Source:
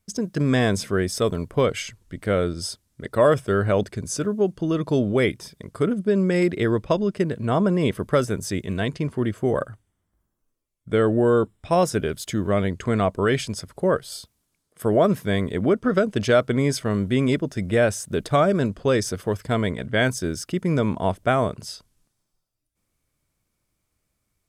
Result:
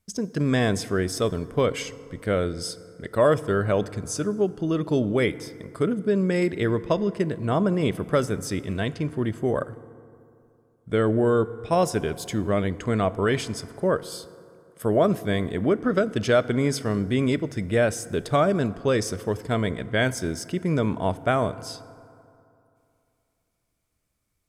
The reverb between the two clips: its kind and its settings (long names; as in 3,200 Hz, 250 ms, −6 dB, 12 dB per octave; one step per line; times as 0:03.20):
feedback delay network reverb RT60 2.7 s, high-frequency decay 0.4×, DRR 15.5 dB
level −2 dB